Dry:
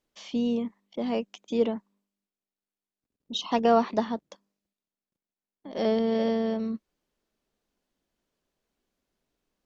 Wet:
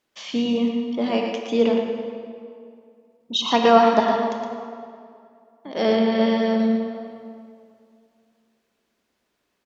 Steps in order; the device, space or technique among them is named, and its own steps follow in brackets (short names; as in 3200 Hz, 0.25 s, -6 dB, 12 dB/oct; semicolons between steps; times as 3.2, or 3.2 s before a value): PA in a hall (HPF 140 Hz 6 dB/oct; bell 2000 Hz +5 dB 2.4 oct; echo 0.116 s -6 dB; reverb RT60 2.2 s, pre-delay 21 ms, DRR 4.5 dB); 5.96–6.38 LPF 5400 Hz 12 dB/oct; tape echo 0.106 s, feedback 77%, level -17 dB, low-pass 3800 Hz; gain +4.5 dB